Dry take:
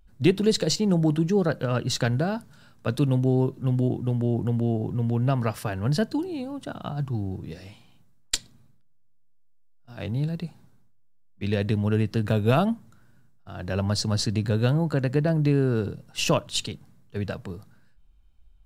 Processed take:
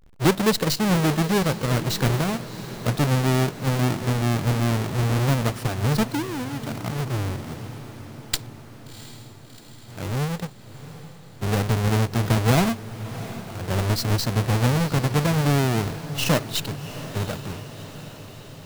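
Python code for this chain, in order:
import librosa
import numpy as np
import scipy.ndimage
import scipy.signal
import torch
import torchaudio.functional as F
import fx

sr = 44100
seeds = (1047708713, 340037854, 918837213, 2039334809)

y = fx.halfwave_hold(x, sr)
y = fx.echo_diffused(y, sr, ms=715, feedback_pct=66, wet_db=-14)
y = y * 10.0 ** (-2.5 / 20.0)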